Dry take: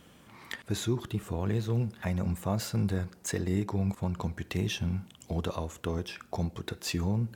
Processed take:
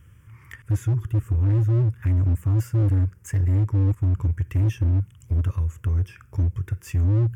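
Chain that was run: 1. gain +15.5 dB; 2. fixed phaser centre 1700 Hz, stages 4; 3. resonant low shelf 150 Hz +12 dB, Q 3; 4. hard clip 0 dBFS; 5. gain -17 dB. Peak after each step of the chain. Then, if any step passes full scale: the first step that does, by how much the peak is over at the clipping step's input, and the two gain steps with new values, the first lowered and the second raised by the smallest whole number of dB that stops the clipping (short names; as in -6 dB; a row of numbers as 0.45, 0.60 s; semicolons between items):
-1.0, -3.5, +9.0, 0.0, -17.0 dBFS; step 3, 9.0 dB; step 1 +6.5 dB, step 5 -8 dB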